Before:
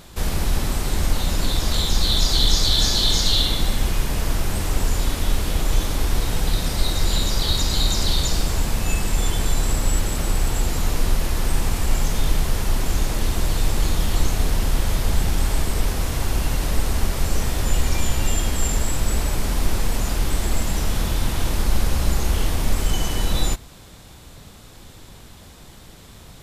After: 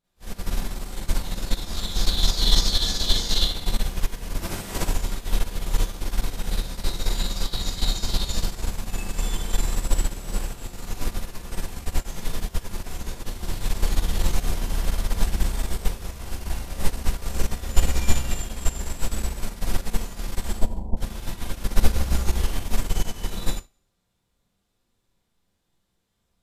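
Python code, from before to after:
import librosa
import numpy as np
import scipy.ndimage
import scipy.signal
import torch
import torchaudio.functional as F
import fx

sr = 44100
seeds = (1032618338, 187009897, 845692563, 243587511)

y = fx.spec_clip(x, sr, under_db=14, at=(4.37, 4.79), fade=0.02)
y = fx.steep_lowpass(y, sr, hz=1000.0, slope=96, at=(20.53, 20.97))
y = y + 10.0 ** (-21.0 / 20.0) * np.pad(y, (int(199 * sr / 1000.0), 0))[:len(y)]
y = fx.rev_schroeder(y, sr, rt60_s=0.54, comb_ms=32, drr_db=-10.0)
y = fx.upward_expand(y, sr, threshold_db=-22.0, expansion=2.5)
y = y * 10.0 ** (-6.0 / 20.0)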